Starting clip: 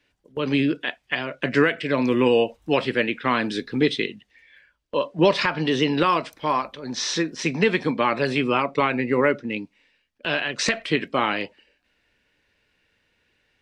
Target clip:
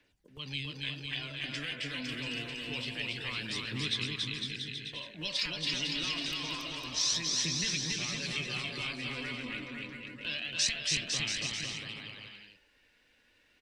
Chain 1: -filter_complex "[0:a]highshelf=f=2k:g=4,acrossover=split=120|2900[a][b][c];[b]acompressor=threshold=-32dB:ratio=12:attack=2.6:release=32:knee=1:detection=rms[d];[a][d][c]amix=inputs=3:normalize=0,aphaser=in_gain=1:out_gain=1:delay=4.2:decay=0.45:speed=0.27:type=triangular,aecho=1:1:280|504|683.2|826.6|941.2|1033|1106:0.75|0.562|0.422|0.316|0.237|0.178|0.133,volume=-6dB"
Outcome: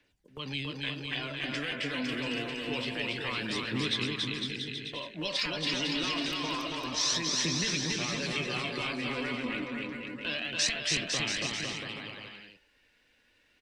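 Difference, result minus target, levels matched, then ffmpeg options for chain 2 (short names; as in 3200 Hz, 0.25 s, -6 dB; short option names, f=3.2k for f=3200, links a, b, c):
compressor: peak gain reduction -9.5 dB
-filter_complex "[0:a]highshelf=f=2k:g=4,acrossover=split=120|2900[a][b][c];[b]acompressor=threshold=-42.5dB:ratio=12:attack=2.6:release=32:knee=1:detection=rms[d];[a][d][c]amix=inputs=3:normalize=0,aphaser=in_gain=1:out_gain=1:delay=4.2:decay=0.45:speed=0.27:type=triangular,aecho=1:1:280|504|683.2|826.6|941.2|1033|1106:0.75|0.562|0.422|0.316|0.237|0.178|0.133,volume=-6dB"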